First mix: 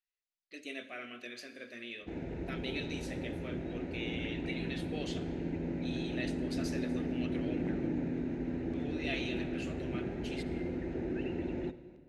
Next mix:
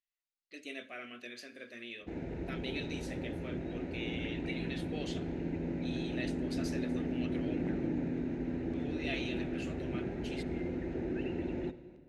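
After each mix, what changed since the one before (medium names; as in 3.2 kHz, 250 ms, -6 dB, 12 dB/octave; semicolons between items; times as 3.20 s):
speech: send -7.5 dB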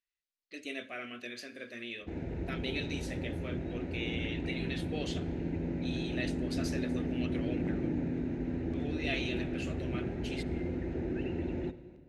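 speech +3.5 dB; master: add peaking EQ 79 Hz +6.5 dB 1.5 oct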